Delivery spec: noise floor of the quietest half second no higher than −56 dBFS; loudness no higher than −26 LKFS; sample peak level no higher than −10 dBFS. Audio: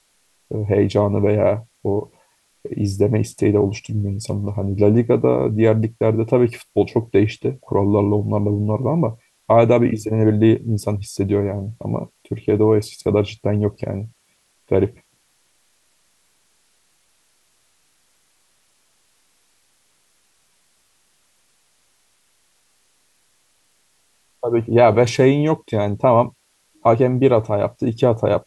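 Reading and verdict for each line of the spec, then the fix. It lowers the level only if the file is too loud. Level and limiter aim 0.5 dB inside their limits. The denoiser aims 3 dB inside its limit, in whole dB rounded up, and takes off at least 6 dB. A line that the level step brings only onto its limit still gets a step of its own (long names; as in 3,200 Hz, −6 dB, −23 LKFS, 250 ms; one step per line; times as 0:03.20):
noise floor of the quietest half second −62 dBFS: in spec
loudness −18.5 LKFS: out of spec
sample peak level −2.5 dBFS: out of spec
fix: level −8 dB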